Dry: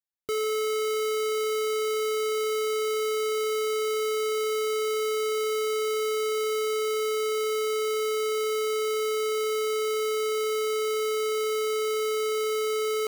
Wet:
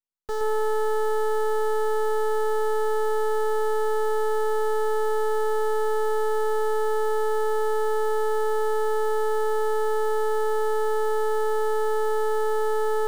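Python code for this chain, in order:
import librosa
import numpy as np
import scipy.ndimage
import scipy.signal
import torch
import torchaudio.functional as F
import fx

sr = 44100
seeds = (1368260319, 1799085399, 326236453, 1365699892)

p1 = scipy.signal.sosfilt(scipy.signal.butter(2, 77.0, 'highpass', fs=sr, output='sos'), x)
p2 = fx.high_shelf(p1, sr, hz=5000.0, db=-11.0)
p3 = fx.fixed_phaser(p2, sr, hz=460.0, stages=8)
p4 = np.maximum(p3, 0.0)
p5 = p4 + fx.echo_single(p4, sr, ms=120, db=-6.0, dry=0)
y = p5 * librosa.db_to_amplitude(5.0)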